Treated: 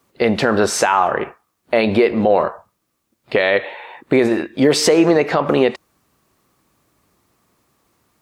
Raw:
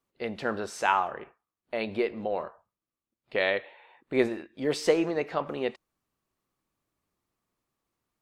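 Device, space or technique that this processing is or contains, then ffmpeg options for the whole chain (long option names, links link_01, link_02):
mastering chain: -af "highpass=51,equalizer=frequency=3000:width_type=o:width=0.77:gain=-2,acompressor=threshold=-29dB:ratio=2.5,alimiter=level_in=23dB:limit=-1dB:release=50:level=0:latency=1,volume=-2.5dB"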